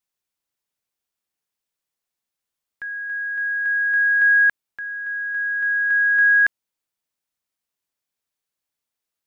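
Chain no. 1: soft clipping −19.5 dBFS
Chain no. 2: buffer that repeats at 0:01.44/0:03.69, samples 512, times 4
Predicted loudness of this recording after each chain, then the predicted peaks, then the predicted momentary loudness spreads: −22.5, −18.0 LKFS; −19.5, −11.5 dBFS; 10, 15 LU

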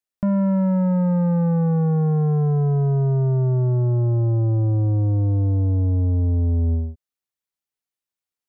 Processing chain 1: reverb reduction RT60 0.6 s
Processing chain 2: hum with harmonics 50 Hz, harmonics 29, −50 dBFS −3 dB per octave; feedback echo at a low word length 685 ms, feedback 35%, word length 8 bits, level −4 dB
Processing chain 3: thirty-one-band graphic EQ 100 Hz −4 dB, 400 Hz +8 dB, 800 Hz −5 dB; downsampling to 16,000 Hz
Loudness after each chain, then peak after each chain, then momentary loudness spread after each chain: −22.0, −19.0, −20.5 LKFS; −17.5, −11.0, −13.5 dBFS; 1, 8, 4 LU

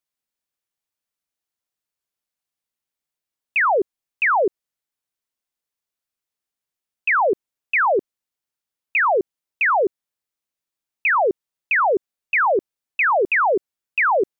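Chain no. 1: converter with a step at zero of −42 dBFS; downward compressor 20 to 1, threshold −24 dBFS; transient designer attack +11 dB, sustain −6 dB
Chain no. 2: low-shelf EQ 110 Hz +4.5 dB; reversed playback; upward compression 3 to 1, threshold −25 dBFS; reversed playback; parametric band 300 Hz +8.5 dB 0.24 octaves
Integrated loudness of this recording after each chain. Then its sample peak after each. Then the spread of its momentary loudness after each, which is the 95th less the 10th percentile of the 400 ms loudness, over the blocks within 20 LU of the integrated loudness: −22.5, −20.0 LKFS; −3.5, −10.5 dBFS; 13, 6 LU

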